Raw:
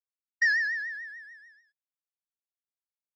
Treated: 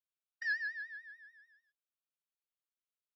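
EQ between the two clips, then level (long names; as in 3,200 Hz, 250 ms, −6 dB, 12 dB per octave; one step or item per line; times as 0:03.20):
high-pass filter 790 Hz 6 dB per octave
high-shelf EQ 6,100 Hz −8 dB
phaser with its sweep stopped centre 1,300 Hz, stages 8
0.0 dB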